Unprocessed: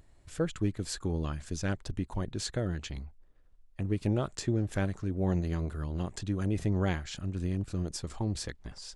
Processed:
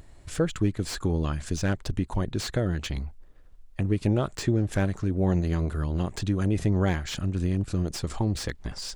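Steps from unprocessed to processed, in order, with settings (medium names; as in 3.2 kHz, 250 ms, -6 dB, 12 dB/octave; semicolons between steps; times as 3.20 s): in parallel at +2.5 dB: compression, threshold -37 dBFS, peak gain reduction 13 dB; on the sum: slew-rate limiter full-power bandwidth 100 Hz; trim +2.5 dB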